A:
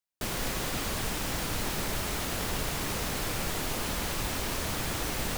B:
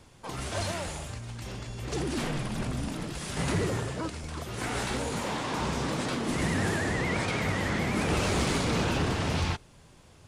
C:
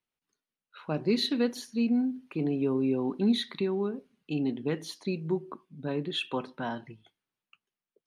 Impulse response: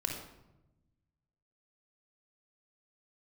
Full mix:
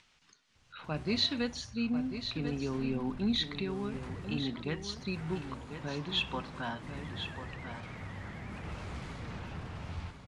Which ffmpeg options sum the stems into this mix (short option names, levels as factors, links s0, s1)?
-filter_complex "[1:a]lowpass=f=1200:p=1,adelay=550,volume=0.335,asplit=2[s0][s1];[s1]volume=0.398[s2];[2:a]acompressor=mode=upward:threshold=0.00562:ratio=2.5,lowpass=f=6700:w=0.5412,lowpass=f=6700:w=1.3066,volume=1.19,asplit=2[s3][s4];[s4]volume=0.355[s5];[s2][s5]amix=inputs=2:normalize=0,aecho=0:1:1044:1[s6];[s0][s3][s6]amix=inputs=3:normalize=0,equalizer=f=380:t=o:w=2.2:g=-10.5"